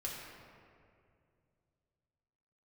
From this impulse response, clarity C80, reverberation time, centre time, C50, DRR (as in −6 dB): 2.0 dB, 2.4 s, 100 ms, 0.5 dB, −4.0 dB